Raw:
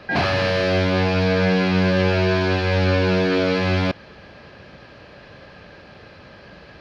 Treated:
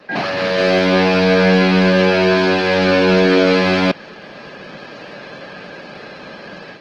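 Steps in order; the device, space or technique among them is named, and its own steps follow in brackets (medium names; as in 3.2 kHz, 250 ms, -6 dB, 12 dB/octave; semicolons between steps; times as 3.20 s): video call (high-pass 160 Hz 24 dB/octave; level rider gain up to 10.5 dB; Opus 16 kbps 48 kHz)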